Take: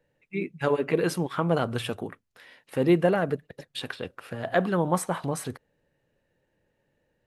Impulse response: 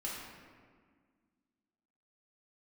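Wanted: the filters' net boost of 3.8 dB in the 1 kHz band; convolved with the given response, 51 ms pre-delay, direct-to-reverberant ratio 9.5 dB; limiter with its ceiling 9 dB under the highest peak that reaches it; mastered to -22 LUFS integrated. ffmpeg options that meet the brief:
-filter_complex "[0:a]equalizer=f=1000:t=o:g=5,alimiter=limit=0.158:level=0:latency=1,asplit=2[s0][s1];[1:a]atrim=start_sample=2205,adelay=51[s2];[s1][s2]afir=irnorm=-1:irlink=0,volume=0.266[s3];[s0][s3]amix=inputs=2:normalize=0,volume=2.37"

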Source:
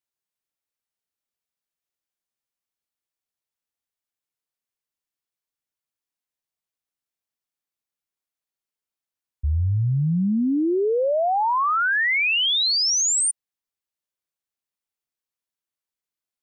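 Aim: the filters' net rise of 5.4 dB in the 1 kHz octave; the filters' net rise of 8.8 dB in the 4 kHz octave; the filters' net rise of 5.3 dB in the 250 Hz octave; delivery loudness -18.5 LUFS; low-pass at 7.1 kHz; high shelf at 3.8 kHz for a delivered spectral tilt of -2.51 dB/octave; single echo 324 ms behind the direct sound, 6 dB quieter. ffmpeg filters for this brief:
-af "lowpass=7100,equalizer=f=250:t=o:g=6.5,equalizer=f=1000:t=o:g=5.5,highshelf=f=3800:g=6.5,equalizer=f=4000:t=o:g=7,aecho=1:1:324:0.501,volume=0.562"

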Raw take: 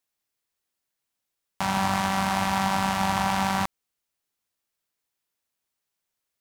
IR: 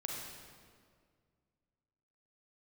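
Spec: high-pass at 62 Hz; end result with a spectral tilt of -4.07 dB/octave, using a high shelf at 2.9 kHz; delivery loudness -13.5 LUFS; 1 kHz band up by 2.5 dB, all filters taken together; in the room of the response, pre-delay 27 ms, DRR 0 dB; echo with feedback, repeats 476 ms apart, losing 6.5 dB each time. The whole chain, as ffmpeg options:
-filter_complex "[0:a]highpass=62,equalizer=f=1000:t=o:g=3.5,highshelf=f=2900:g=-3.5,aecho=1:1:476|952|1428|1904|2380|2856:0.473|0.222|0.105|0.0491|0.0231|0.0109,asplit=2[s0][s1];[1:a]atrim=start_sample=2205,adelay=27[s2];[s1][s2]afir=irnorm=-1:irlink=0,volume=0.891[s3];[s0][s3]amix=inputs=2:normalize=0,volume=1.88"

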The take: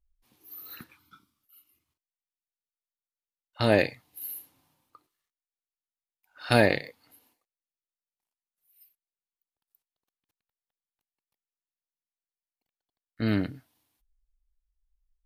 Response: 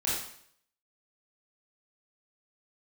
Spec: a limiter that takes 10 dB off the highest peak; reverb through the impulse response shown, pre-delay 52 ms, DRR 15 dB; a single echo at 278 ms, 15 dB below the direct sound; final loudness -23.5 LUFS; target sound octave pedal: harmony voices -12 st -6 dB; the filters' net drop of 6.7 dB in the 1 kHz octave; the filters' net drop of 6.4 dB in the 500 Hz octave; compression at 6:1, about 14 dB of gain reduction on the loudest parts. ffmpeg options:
-filter_complex "[0:a]equalizer=f=500:t=o:g=-5.5,equalizer=f=1000:t=o:g=-7.5,acompressor=threshold=0.02:ratio=6,alimiter=level_in=1.58:limit=0.0631:level=0:latency=1,volume=0.631,aecho=1:1:278:0.178,asplit=2[s0][s1];[1:a]atrim=start_sample=2205,adelay=52[s2];[s1][s2]afir=irnorm=-1:irlink=0,volume=0.075[s3];[s0][s3]amix=inputs=2:normalize=0,asplit=2[s4][s5];[s5]asetrate=22050,aresample=44100,atempo=2,volume=0.501[s6];[s4][s6]amix=inputs=2:normalize=0,volume=8.91"

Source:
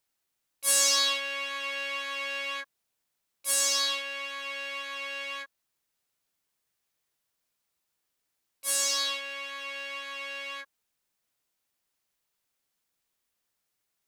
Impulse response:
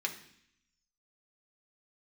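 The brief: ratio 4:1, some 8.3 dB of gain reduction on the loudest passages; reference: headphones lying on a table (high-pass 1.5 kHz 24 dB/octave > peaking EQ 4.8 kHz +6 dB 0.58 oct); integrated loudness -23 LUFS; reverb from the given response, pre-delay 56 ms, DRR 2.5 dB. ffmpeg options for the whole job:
-filter_complex "[0:a]acompressor=threshold=0.0398:ratio=4,asplit=2[s0][s1];[1:a]atrim=start_sample=2205,adelay=56[s2];[s1][s2]afir=irnorm=-1:irlink=0,volume=0.501[s3];[s0][s3]amix=inputs=2:normalize=0,highpass=f=1500:w=0.5412,highpass=f=1500:w=1.3066,equalizer=f=4800:t=o:w=0.58:g=6,volume=2.24"

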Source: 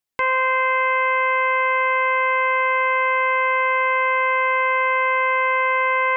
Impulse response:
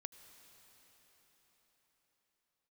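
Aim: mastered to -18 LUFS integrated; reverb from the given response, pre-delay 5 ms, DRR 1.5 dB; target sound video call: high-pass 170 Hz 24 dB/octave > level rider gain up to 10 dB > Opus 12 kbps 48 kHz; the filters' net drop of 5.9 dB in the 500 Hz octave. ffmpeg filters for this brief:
-filter_complex "[0:a]equalizer=f=500:t=o:g=-6,asplit=2[s0][s1];[1:a]atrim=start_sample=2205,adelay=5[s2];[s1][s2]afir=irnorm=-1:irlink=0,volume=1.5[s3];[s0][s3]amix=inputs=2:normalize=0,highpass=f=170:w=0.5412,highpass=f=170:w=1.3066,dynaudnorm=m=3.16,volume=0.891" -ar 48000 -c:a libopus -b:a 12k

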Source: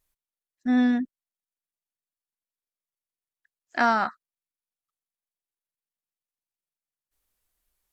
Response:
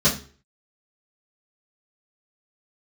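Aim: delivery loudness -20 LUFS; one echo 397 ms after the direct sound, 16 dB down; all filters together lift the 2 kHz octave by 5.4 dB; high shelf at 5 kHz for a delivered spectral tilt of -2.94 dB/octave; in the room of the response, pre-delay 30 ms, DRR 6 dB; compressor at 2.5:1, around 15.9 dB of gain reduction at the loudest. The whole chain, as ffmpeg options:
-filter_complex "[0:a]equalizer=f=2000:t=o:g=6.5,highshelf=f=5000:g=6.5,acompressor=threshold=0.0112:ratio=2.5,aecho=1:1:397:0.158,asplit=2[s0][s1];[1:a]atrim=start_sample=2205,adelay=30[s2];[s1][s2]afir=irnorm=-1:irlink=0,volume=0.0794[s3];[s0][s3]amix=inputs=2:normalize=0,volume=5.62"

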